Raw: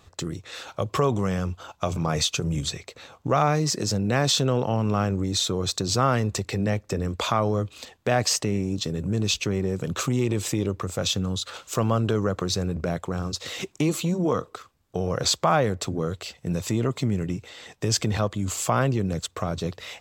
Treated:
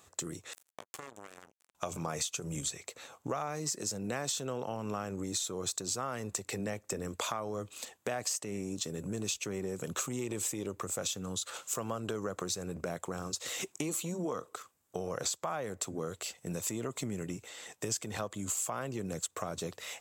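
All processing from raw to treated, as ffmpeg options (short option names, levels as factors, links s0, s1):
-filter_complex "[0:a]asettb=1/sr,asplit=3[s0][s1][s2];[s0]atrim=end=0.534[s3];[s1]atrim=start=0.53:end=1.75,asetpts=PTS-STARTPTS,afade=t=in:d=0.004:c=qsin,afade=t=out:st=1.216:d=0.004:c=qsin,acompressor=threshold=0.0112:ratio=3:attack=3.2:release=140:knee=1:detection=peak,acrusher=bits=4:mix=0:aa=0.5[s4];[s2]atrim=start=1.746[s5];[s3][s4]acrossfade=d=0.004:c1=hsin:c2=qsin[s6];[s6][s5]acrossfade=d=0.004:c1=qsin:c2=hsin,highpass=f=330:p=1,highshelf=f=6000:t=q:w=1.5:g=7.5,acompressor=threshold=0.0398:ratio=6,volume=0.631"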